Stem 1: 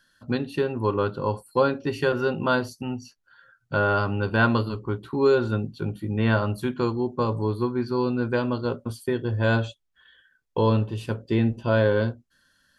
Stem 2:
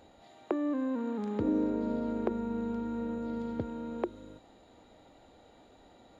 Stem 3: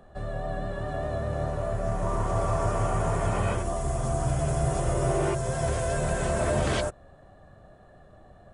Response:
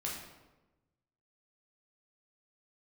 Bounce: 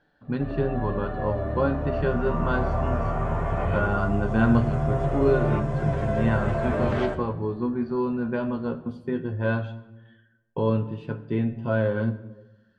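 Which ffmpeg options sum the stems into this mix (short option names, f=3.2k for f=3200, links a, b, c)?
-filter_complex "[0:a]equalizer=f=180:w=1.7:g=8,volume=-2.5dB,asplit=2[a][b];[b]volume=-9.5dB[c];[1:a]volume=-10.5dB,asplit=2[d][e];[e]volume=-6.5dB[f];[2:a]adelay=250,volume=1dB,asplit=2[g][h];[h]volume=-6dB[i];[3:a]atrim=start_sample=2205[j];[c][f][i]amix=inputs=3:normalize=0[k];[k][j]afir=irnorm=-1:irlink=0[l];[a][d][g][l]amix=inputs=4:normalize=0,lowpass=2.4k,flanger=delay=6.8:depth=6.4:regen=49:speed=0.18:shape=sinusoidal"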